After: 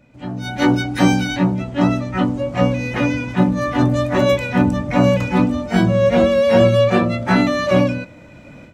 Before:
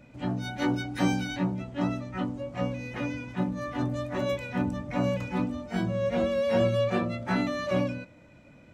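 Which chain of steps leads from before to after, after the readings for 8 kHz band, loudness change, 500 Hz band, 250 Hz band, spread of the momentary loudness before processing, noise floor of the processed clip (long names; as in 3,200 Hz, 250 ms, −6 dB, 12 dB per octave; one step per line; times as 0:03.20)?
+12.0 dB, +12.5 dB, +12.5 dB, +12.5 dB, 8 LU, −42 dBFS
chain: automatic gain control gain up to 15.5 dB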